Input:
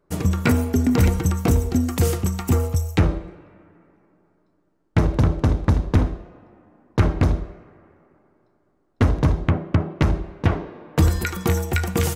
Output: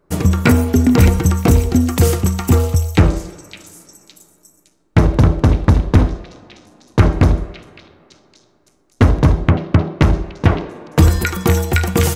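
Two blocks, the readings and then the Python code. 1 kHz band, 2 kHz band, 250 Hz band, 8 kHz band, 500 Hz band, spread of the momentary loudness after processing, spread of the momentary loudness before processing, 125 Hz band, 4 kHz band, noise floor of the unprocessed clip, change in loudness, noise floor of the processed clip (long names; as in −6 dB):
+6.5 dB, +6.5 dB, +6.5 dB, +6.5 dB, +6.5 dB, 6 LU, 5 LU, +6.5 dB, +7.0 dB, −66 dBFS, +6.5 dB, −58 dBFS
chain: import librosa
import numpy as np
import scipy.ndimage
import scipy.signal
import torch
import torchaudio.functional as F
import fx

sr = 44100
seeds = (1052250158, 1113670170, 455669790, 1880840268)

y = fx.echo_stepped(x, sr, ms=562, hz=3300.0, octaves=0.7, feedback_pct=70, wet_db=-9)
y = y * librosa.db_to_amplitude(6.5)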